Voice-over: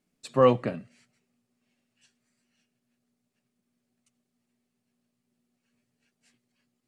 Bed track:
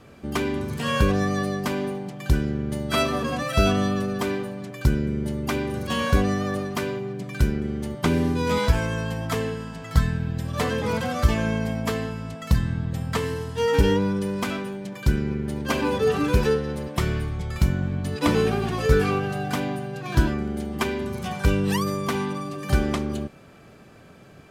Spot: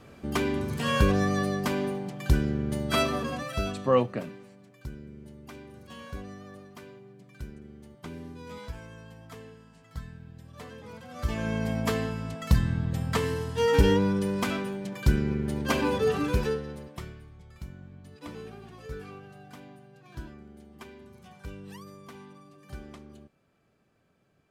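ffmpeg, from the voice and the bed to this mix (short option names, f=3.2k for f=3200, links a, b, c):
-filter_complex "[0:a]adelay=3500,volume=-3dB[a];[1:a]volume=16dB,afade=t=out:st=2.91:d=0.96:silence=0.133352,afade=t=in:st=11.08:d=0.7:silence=0.125893,afade=t=out:st=15.68:d=1.48:silence=0.105925[b];[a][b]amix=inputs=2:normalize=0"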